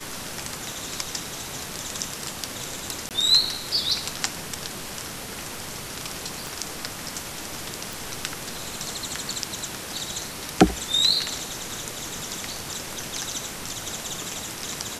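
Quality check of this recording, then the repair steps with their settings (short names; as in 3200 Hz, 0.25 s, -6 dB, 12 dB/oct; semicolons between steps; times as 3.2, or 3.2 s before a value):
3.09–3.11 gap 18 ms
6.47 pop
7.93 pop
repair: de-click; interpolate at 3.09, 18 ms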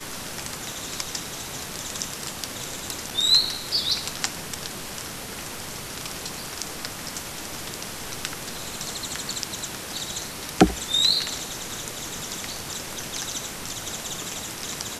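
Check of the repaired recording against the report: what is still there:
6.47 pop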